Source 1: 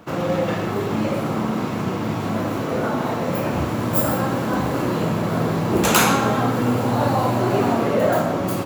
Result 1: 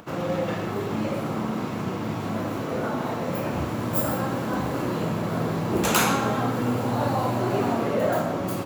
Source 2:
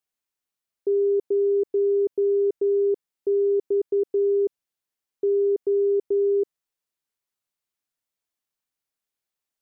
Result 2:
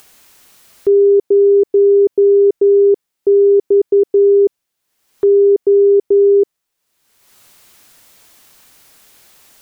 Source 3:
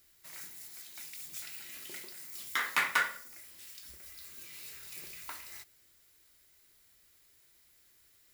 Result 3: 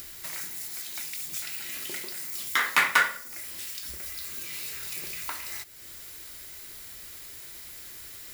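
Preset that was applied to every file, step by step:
upward compressor, threshold -37 dBFS; peak normalisation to -6 dBFS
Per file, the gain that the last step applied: -5.0 dB, +11.5 dB, +7.5 dB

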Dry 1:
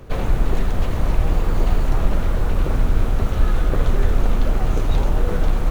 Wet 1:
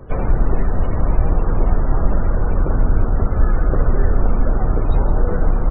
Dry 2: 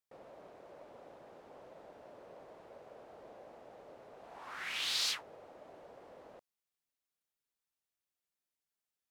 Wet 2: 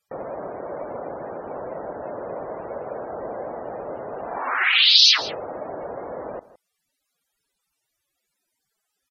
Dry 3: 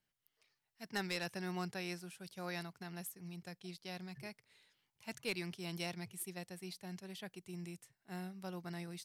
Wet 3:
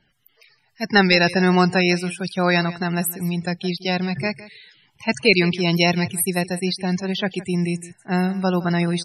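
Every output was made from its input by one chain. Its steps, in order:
low-pass that closes with the level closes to 2.8 kHz, closed at -13.5 dBFS; loudest bins only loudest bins 64; delay 163 ms -17.5 dB; peak normalisation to -2 dBFS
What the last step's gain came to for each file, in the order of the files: +2.5 dB, +22.0 dB, +25.0 dB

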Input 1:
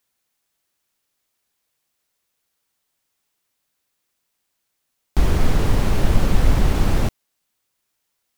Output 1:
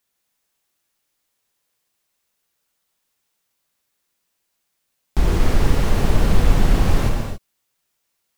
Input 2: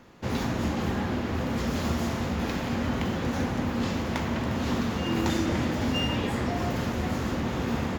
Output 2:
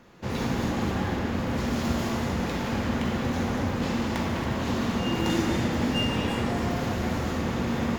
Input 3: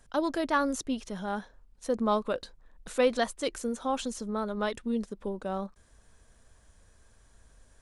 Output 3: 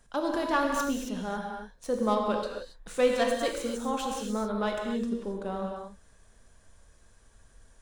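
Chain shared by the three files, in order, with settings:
tracing distortion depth 0.035 ms; gated-style reverb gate 300 ms flat, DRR 0.5 dB; trim -1.5 dB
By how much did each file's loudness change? +1.0 LU, +1.0 LU, +1.0 LU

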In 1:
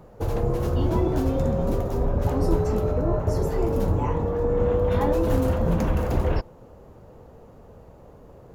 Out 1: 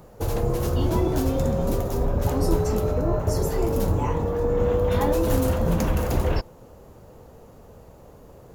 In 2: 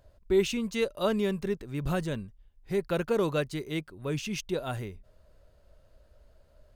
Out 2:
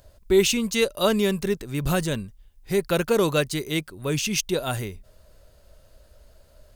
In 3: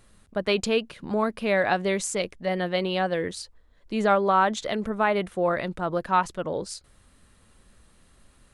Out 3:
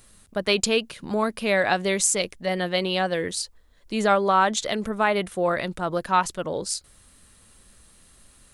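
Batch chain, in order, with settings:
treble shelf 3.9 kHz +11.5 dB; normalise loudness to -24 LUFS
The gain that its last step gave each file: 0.0 dB, +5.5 dB, +0.5 dB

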